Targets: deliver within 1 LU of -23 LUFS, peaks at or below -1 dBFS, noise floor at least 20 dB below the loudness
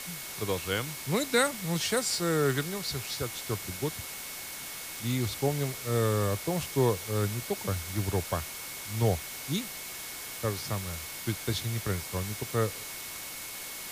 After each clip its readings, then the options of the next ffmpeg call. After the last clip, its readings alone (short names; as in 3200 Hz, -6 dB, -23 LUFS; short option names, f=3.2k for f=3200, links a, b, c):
steady tone 2200 Hz; tone level -48 dBFS; noise floor -41 dBFS; noise floor target -51 dBFS; loudness -31.0 LUFS; peak -11.0 dBFS; loudness target -23.0 LUFS
-> -af "bandreject=f=2.2k:w=30"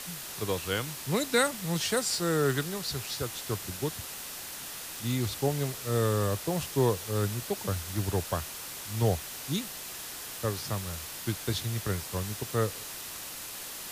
steady tone none; noise floor -41 dBFS; noise floor target -52 dBFS
-> -af "afftdn=nr=11:nf=-41"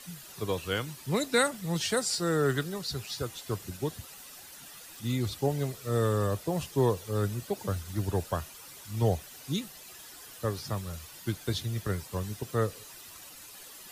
noise floor -49 dBFS; noise floor target -52 dBFS
-> -af "afftdn=nr=6:nf=-49"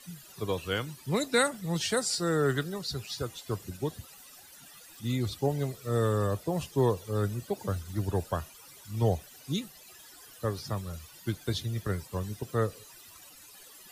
noise floor -52 dBFS; loudness -31.5 LUFS; peak -11.0 dBFS; loudness target -23.0 LUFS
-> -af "volume=8.5dB"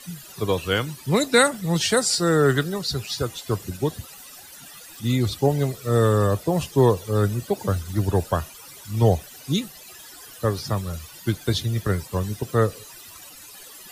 loudness -23.0 LUFS; peak -2.5 dBFS; noise floor -44 dBFS